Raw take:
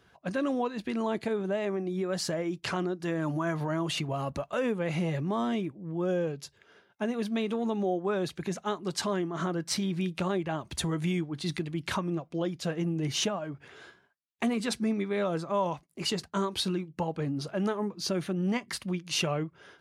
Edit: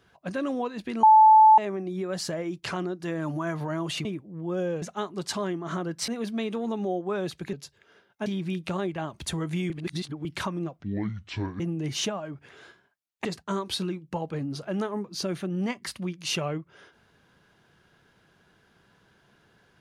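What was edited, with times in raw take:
1.03–1.58 s: bleep 871 Hz -11 dBFS
4.05–5.56 s: delete
6.33–7.06 s: swap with 8.51–9.77 s
11.21–11.76 s: reverse
12.31–12.79 s: speed 60%
14.44–16.11 s: delete

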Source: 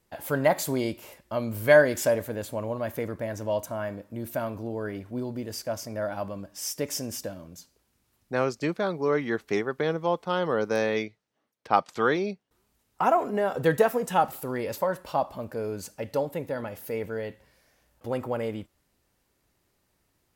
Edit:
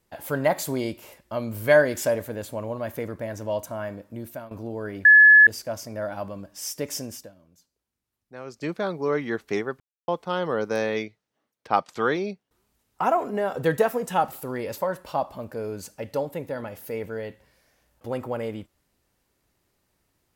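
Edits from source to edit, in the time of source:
4.15–4.51 s: fade out, to -15.5 dB
5.05–5.47 s: bleep 1.71 kHz -8.5 dBFS
7.01–8.75 s: dip -14 dB, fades 0.31 s
9.80–10.08 s: mute

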